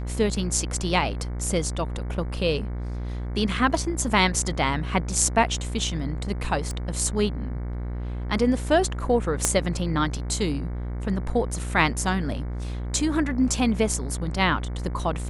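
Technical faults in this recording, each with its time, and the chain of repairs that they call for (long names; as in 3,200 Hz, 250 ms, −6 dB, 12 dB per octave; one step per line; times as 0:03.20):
mains buzz 60 Hz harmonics 38 −30 dBFS
0:06.71: click −20 dBFS
0:09.45: click −6 dBFS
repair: click removal
hum removal 60 Hz, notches 38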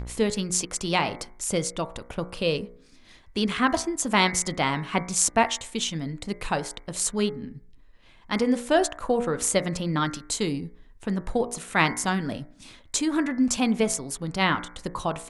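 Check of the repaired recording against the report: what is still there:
0:09.45: click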